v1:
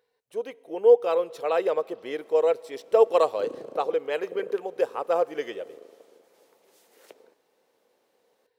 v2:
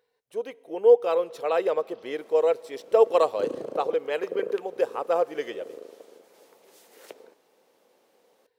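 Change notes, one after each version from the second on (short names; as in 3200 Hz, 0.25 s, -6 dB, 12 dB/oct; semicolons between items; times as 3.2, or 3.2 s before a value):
background +5.5 dB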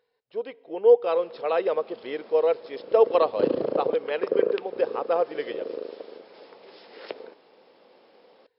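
background +8.5 dB; master: add brick-wall FIR low-pass 5400 Hz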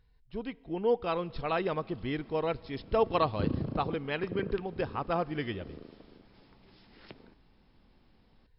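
background -10.0 dB; master: remove resonant high-pass 490 Hz, resonance Q 4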